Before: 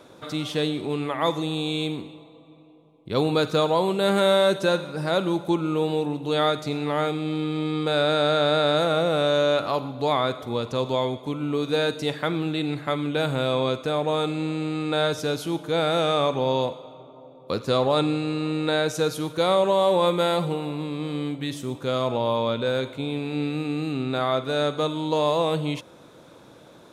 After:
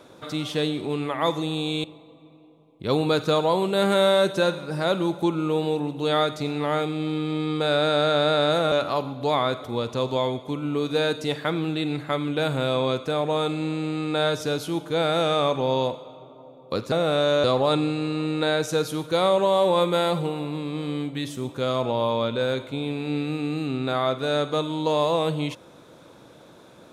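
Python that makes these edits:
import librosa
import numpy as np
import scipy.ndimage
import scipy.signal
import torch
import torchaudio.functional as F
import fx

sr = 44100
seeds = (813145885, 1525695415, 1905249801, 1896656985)

y = fx.edit(x, sr, fx.cut(start_s=1.84, length_s=0.26),
    fx.move(start_s=8.98, length_s=0.52, to_s=17.7), tone=tone)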